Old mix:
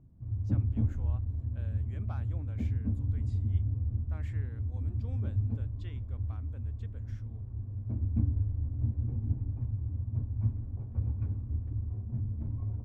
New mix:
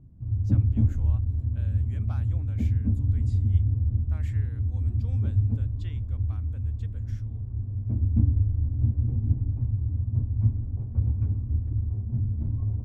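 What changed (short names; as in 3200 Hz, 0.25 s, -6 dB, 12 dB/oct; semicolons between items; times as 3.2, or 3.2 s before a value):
speech: add tilt +3 dB/oct; master: add low shelf 410 Hz +7.5 dB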